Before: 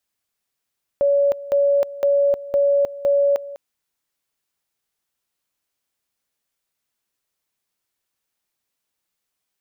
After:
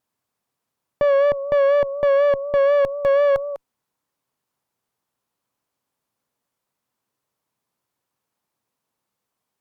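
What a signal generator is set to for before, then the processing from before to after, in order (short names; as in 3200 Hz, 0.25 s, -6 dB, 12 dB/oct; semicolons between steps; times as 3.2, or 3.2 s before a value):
two-level tone 565 Hz -13.5 dBFS, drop 17 dB, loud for 0.31 s, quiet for 0.20 s, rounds 5
vibrato 4.1 Hz 45 cents; tube stage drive 24 dB, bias 0.65; ten-band EQ 125 Hz +11 dB, 250 Hz +8 dB, 500 Hz +6 dB, 1000 Hz +10 dB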